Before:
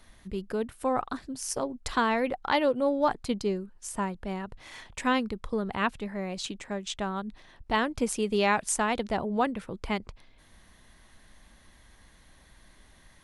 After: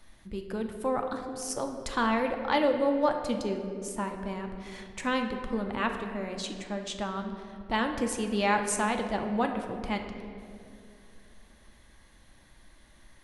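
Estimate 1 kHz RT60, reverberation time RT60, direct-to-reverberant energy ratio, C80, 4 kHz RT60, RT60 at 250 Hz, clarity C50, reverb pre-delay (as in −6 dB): 2.0 s, 2.5 s, 4.0 dB, 8.0 dB, 1.4 s, 3.0 s, 6.5 dB, 3 ms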